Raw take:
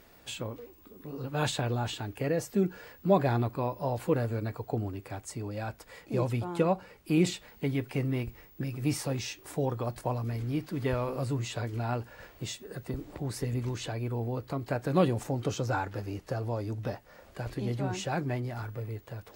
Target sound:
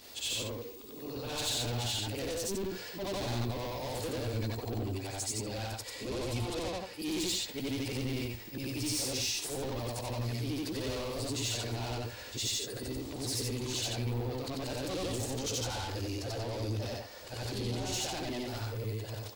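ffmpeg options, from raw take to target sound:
-filter_complex "[0:a]afftfilt=real='re':imag='-im':win_size=8192:overlap=0.75,acontrast=70,asplit=2[a][b];[b]highpass=f=720:p=1,volume=31dB,asoftclip=type=tanh:threshold=-11.5dB[c];[a][c]amix=inputs=2:normalize=0,lowpass=f=1.6k:p=1,volume=-6dB,firequalizer=gain_entry='entry(110,0);entry(150,-17);entry(220,-7);entry(580,-12);entry(1400,-16);entry(2900,-3);entry(4200,5);entry(8100,7)':delay=0.05:min_phase=1,volume=-7dB"

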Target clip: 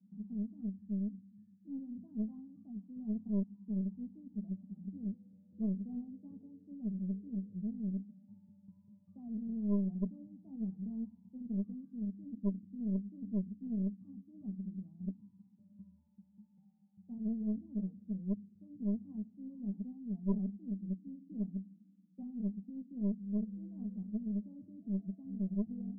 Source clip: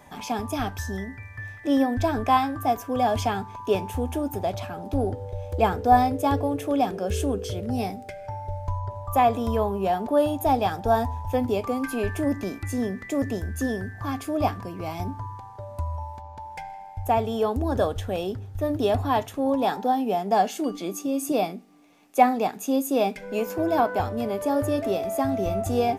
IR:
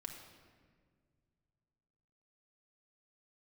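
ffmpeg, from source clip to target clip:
-filter_complex "[0:a]asuperpass=centerf=200:order=4:qfactor=7.3,flanger=delay=9.6:depth=7.8:regen=48:speed=1.2:shape=triangular,asplit=2[a][b];[1:a]atrim=start_sample=2205[c];[b][c]afir=irnorm=-1:irlink=0,volume=-11dB[d];[a][d]amix=inputs=2:normalize=0,aeval=exprs='0.0422*(cos(1*acos(clip(val(0)/0.0422,-1,1)))-cos(1*PI/2))+0.0133*(cos(2*acos(clip(val(0)/0.0422,-1,1)))-cos(2*PI/2))+0.00376*(cos(5*acos(clip(val(0)/0.0422,-1,1)))-cos(5*PI/2))':c=same,volume=3.5dB"

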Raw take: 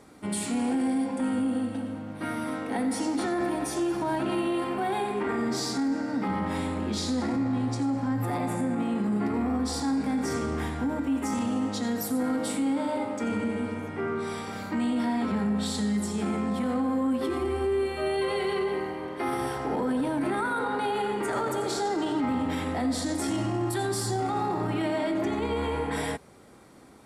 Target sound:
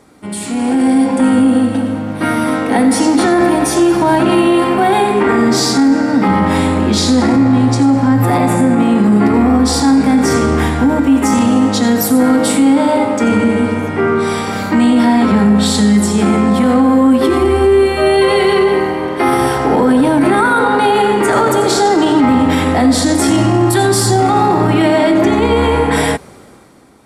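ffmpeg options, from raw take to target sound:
-af "dynaudnorm=f=110:g=13:m=11dB,volume=6dB"

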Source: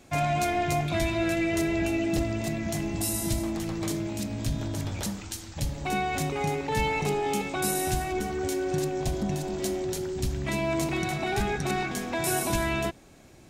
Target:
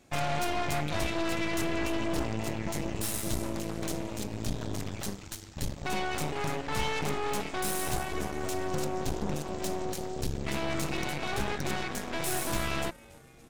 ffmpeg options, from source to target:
-filter_complex "[0:a]asplit=6[a][b][c][d][e][f];[b]adelay=287,afreqshift=-100,volume=-21dB[g];[c]adelay=574,afreqshift=-200,volume=-24.9dB[h];[d]adelay=861,afreqshift=-300,volume=-28.8dB[i];[e]adelay=1148,afreqshift=-400,volume=-32.6dB[j];[f]adelay=1435,afreqshift=-500,volume=-36.5dB[k];[a][g][h][i][j][k]amix=inputs=6:normalize=0,aeval=exprs='0.211*(cos(1*acos(clip(val(0)/0.211,-1,1)))-cos(1*PI/2))+0.0473*(cos(8*acos(clip(val(0)/0.211,-1,1)))-cos(8*PI/2))':c=same,volume=-6.5dB"

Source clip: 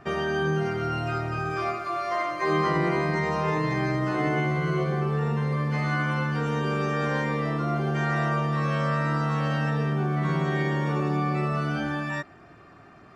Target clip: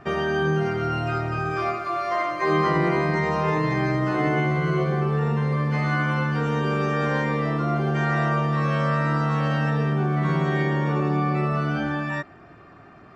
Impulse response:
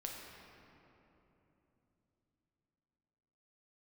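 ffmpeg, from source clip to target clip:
-af "asetnsamples=n=441:p=0,asendcmd='10.65 highshelf g -12',highshelf=f=6k:g=-6.5,volume=3dB"

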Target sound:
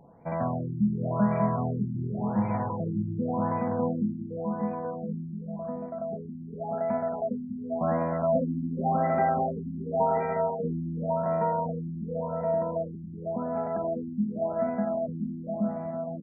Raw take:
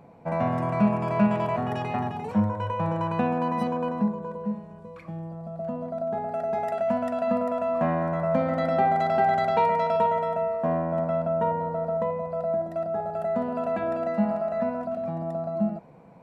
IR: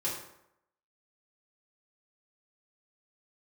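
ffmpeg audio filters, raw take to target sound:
-af "lowshelf=f=76:g=7.5,bandreject=f=50:t=h:w=6,bandreject=f=100:t=h:w=6,aecho=1:1:600|1020|1314|1520|1664:0.631|0.398|0.251|0.158|0.1,afftfilt=real='re*lt(b*sr/1024,340*pow(2500/340,0.5+0.5*sin(2*PI*0.9*pts/sr)))':imag='im*lt(b*sr/1024,340*pow(2500/340,0.5+0.5*sin(2*PI*0.9*pts/sr)))':win_size=1024:overlap=0.75,volume=-4dB"

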